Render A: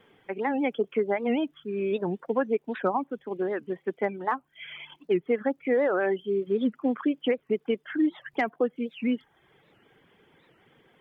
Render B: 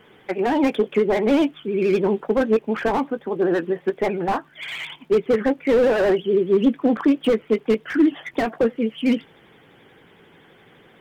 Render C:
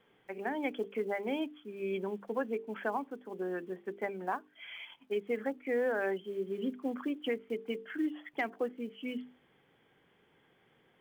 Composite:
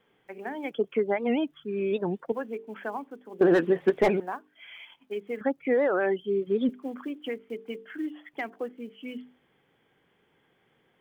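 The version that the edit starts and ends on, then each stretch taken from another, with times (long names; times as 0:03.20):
C
0:00.71–0:02.32: punch in from A
0:03.41–0:04.20: punch in from B
0:05.41–0:06.69: punch in from A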